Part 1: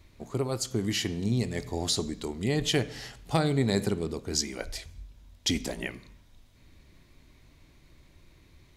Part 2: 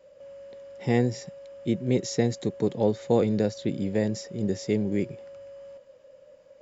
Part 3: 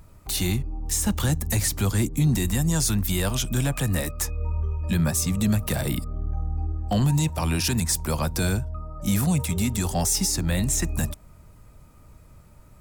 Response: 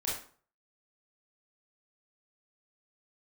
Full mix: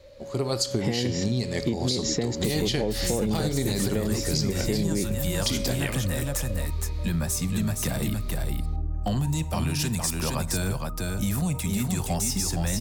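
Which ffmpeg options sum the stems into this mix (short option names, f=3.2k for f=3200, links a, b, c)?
-filter_complex "[0:a]equalizer=f=4.5k:t=o:w=0.63:g=9,volume=-2dB,asplit=2[a][b];[b]volume=-14dB[c];[1:a]acompressor=threshold=-25dB:ratio=2.5,volume=2.5dB[d];[2:a]adelay=2150,volume=-2.5dB,asplit=3[e][f][g];[f]volume=-19dB[h];[g]volume=-4dB[i];[a][d]amix=inputs=2:normalize=0,dynaudnorm=f=130:g=7:m=11.5dB,alimiter=limit=-10dB:level=0:latency=1:release=111,volume=0dB[j];[3:a]atrim=start_sample=2205[k];[c][h]amix=inputs=2:normalize=0[l];[l][k]afir=irnorm=-1:irlink=0[m];[i]aecho=0:1:466:1[n];[e][j][m][n]amix=inputs=4:normalize=0,acompressor=threshold=-22dB:ratio=6"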